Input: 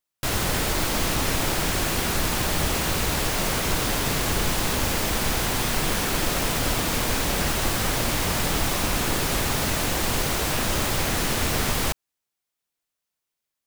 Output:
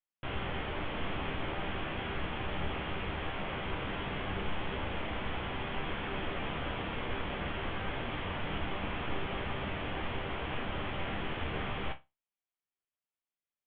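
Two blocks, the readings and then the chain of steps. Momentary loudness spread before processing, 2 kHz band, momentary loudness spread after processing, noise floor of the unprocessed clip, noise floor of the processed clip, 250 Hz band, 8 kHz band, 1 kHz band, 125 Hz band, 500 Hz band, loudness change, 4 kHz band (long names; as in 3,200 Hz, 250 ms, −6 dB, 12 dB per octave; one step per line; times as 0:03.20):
0 LU, −10.5 dB, 1 LU, −84 dBFS, below −85 dBFS, −11.0 dB, below −40 dB, −10.0 dB, −11.5 dB, −10.5 dB, −13.5 dB, −15.0 dB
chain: Chebyshev low-pass filter 3,300 Hz, order 6
resonators tuned to a chord C2 minor, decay 0.22 s
level −1.5 dB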